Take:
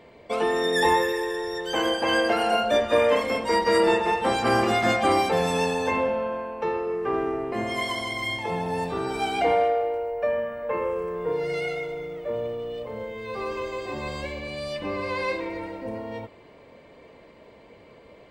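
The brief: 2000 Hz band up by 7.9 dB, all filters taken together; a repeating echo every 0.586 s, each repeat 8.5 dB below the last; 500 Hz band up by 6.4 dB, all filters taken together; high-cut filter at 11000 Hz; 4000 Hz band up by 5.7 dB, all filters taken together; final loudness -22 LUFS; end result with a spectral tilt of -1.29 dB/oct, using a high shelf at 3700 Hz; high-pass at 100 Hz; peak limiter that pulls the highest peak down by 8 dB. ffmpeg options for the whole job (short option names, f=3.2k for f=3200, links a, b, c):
-af "highpass=100,lowpass=11k,equalizer=f=500:t=o:g=7,equalizer=f=2k:t=o:g=8.5,highshelf=f=3.7k:g=-5,equalizer=f=4k:t=o:g=7,alimiter=limit=-11dB:level=0:latency=1,aecho=1:1:586|1172|1758|2344:0.376|0.143|0.0543|0.0206,volume=-1.5dB"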